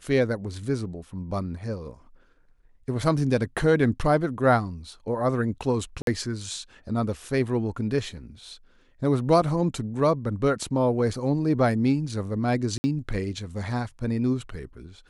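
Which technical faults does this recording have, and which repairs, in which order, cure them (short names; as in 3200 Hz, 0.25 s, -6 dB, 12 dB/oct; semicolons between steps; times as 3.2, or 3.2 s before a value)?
6.02–6.07 gap 52 ms
12.78–12.84 gap 60 ms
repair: interpolate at 6.02, 52 ms; interpolate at 12.78, 60 ms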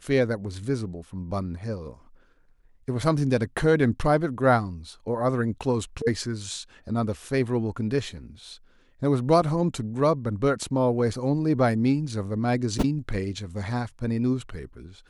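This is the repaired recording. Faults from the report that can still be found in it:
none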